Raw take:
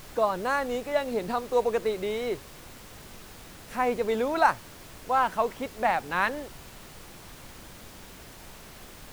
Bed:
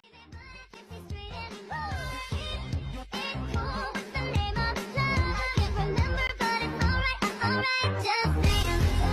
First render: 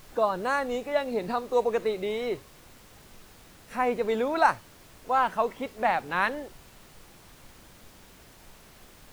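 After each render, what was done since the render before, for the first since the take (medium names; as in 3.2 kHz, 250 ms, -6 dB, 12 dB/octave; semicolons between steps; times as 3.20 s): noise print and reduce 6 dB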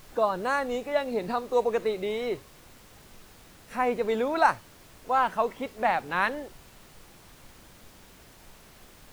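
no audible change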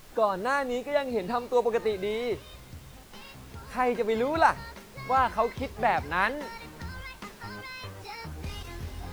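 add bed -14 dB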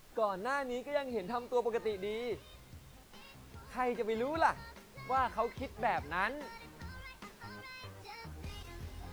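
trim -8 dB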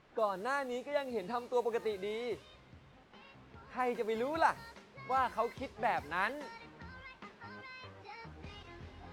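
high-pass 140 Hz 6 dB/octave; level-controlled noise filter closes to 2.4 kHz, open at -32.5 dBFS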